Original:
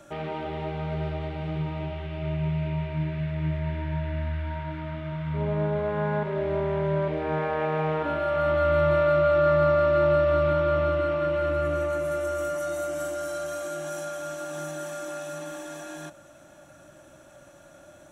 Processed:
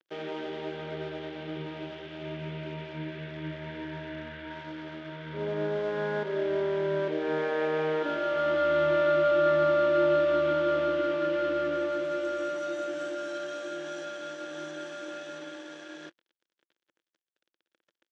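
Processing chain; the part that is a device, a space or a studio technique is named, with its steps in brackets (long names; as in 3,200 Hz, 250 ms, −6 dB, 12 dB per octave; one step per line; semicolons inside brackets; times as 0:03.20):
blown loudspeaker (dead-zone distortion −43 dBFS; loudspeaker in its box 230–5,900 Hz, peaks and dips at 340 Hz +9 dB, 490 Hz +6 dB, 730 Hz −5 dB, 1,100 Hz −4 dB, 1,600 Hz +6 dB, 3,300 Hz +8 dB)
level −3 dB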